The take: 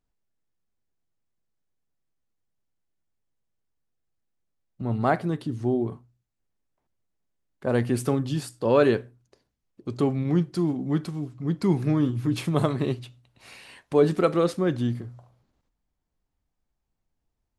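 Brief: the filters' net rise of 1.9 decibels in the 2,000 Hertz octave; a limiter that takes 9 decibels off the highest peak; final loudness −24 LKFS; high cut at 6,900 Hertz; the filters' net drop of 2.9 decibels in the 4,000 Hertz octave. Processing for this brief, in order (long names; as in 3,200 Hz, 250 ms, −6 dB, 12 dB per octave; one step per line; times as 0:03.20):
low-pass filter 6,900 Hz
parametric band 2,000 Hz +3.5 dB
parametric band 4,000 Hz −4.5 dB
level +4 dB
brickwall limiter −12.5 dBFS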